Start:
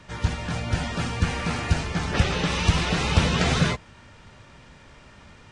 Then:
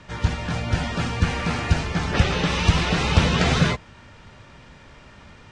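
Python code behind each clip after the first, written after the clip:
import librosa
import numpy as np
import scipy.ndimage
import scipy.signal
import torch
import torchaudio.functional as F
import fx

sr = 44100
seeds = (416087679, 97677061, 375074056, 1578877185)

y = scipy.signal.sosfilt(scipy.signal.bessel(2, 6900.0, 'lowpass', norm='mag', fs=sr, output='sos'), x)
y = y * librosa.db_to_amplitude(2.5)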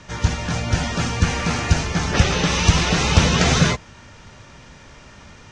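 y = fx.peak_eq(x, sr, hz=6200.0, db=9.0, octaves=0.59)
y = y * librosa.db_to_amplitude(2.5)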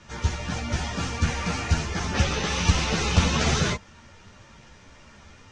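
y = fx.ensemble(x, sr)
y = y * librosa.db_to_amplitude(-3.0)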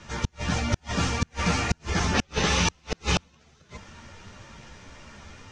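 y = fx.gate_flip(x, sr, shuts_db=-14.0, range_db=-39)
y = y * librosa.db_to_amplitude(3.5)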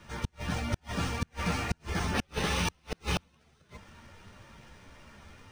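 y = np.interp(np.arange(len(x)), np.arange(len(x))[::3], x[::3])
y = y * librosa.db_to_amplitude(-6.0)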